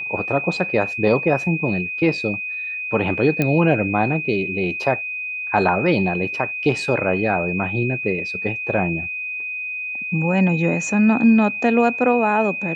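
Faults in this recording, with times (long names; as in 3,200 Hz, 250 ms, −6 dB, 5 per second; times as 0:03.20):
whistle 2,500 Hz −25 dBFS
0:03.42: click −7 dBFS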